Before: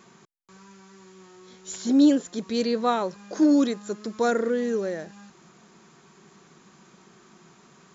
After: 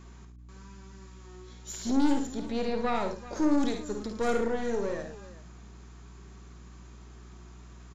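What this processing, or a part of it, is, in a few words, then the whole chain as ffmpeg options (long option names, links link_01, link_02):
valve amplifier with mains hum: -filter_complex "[0:a]aeval=exprs='(tanh(11.2*val(0)+0.5)-tanh(0.5))/11.2':channel_layout=same,aeval=exprs='val(0)+0.00447*(sin(2*PI*60*n/s)+sin(2*PI*2*60*n/s)/2+sin(2*PI*3*60*n/s)/3+sin(2*PI*4*60*n/s)/4+sin(2*PI*5*60*n/s)/5)':channel_layout=same,asettb=1/sr,asplit=3[link_01][link_02][link_03];[link_01]atrim=end=2.344[link_04];[link_02]atrim=start=2.34:end=2.95,asetpts=PTS-STARTPTS,afade=type=in:duration=0.004:curve=qsin,afade=type=out:start_time=0.606:duration=0.004:curve=qsin,acrossover=split=3600[link_05][link_06];[link_06]acompressor=threshold=-55dB:ratio=4:attack=1:release=60[link_07];[link_05][link_07]amix=inputs=2:normalize=0[link_08];[link_03]atrim=start=2.946[link_09];[link_04][link_08]acrossfade=duration=0.004:curve1=hsin:curve2=qsin[link_10];[link_10][link_09]acrossfade=duration=0.004:curve1=qsin:curve2=hsin,aecho=1:1:52|71|110|386:0.422|0.355|0.211|0.141,volume=-2dB"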